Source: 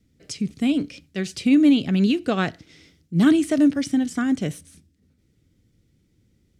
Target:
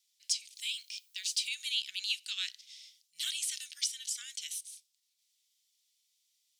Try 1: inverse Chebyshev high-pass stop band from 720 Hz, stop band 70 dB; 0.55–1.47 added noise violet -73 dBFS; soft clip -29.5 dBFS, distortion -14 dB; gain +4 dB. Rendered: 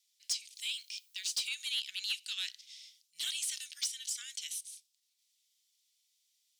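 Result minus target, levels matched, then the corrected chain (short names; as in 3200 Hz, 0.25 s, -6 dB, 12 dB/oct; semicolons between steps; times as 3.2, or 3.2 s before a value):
soft clip: distortion +16 dB
inverse Chebyshev high-pass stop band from 720 Hz, stop band 70 dB; 0.55–1.47 added noise violet -73 dBFS; soft clip -18.5 dBFS, distortion -30 dB; gain +4 dB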